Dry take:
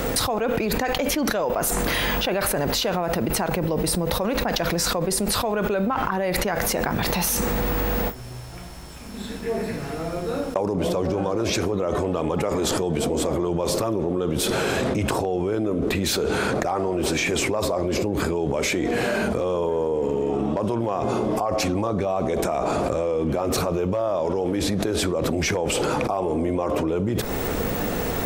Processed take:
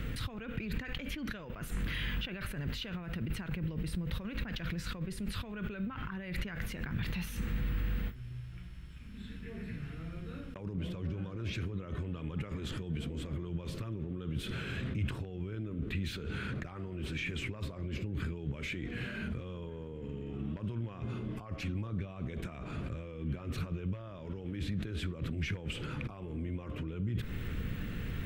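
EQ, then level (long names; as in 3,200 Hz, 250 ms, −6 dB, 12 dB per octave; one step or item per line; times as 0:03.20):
drawn EQ curve 130 Hz 0 dB, 770 Hz −26 dB, 1,500 Hz −9 dB, 3,000 Hz −6 dB, 5,500 Hz −21 dB
−5.5 dB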